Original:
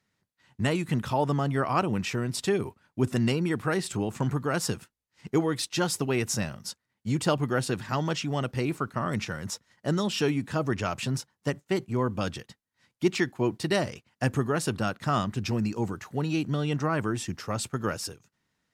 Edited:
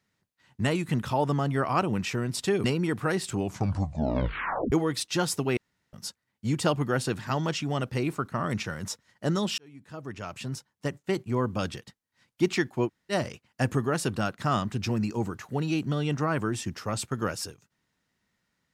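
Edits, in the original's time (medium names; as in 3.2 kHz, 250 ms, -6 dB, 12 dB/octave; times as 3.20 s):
2.64–3.26 s: delete
3.97 s: tape stop 1.37 s
6.19–6.55 s: room tone
10.20–11.87 s: fade in linear
13.49–13.74 s: room tone, crossfade 0.06 s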